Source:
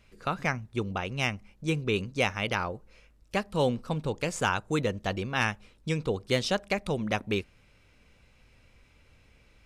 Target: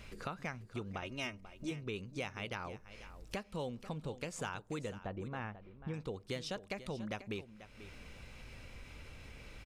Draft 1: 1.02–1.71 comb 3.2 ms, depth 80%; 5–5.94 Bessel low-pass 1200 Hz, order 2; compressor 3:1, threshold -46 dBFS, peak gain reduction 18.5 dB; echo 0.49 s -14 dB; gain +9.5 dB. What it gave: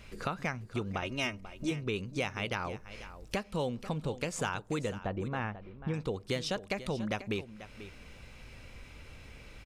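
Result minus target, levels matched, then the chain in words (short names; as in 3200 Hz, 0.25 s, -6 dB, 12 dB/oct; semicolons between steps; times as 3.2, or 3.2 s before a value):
compressor: peak gain reduction -7 dB
1.02–1.71 comb 3.2 ms, depth 80%; 5–5.94 Bessel low-pass 1200 Hz, order 2; compressor 3:1, threshold -56.5 dBFS, peak gain reduction 25.5 dB; echo 0.49 s -14 dB; gain +9.5 dB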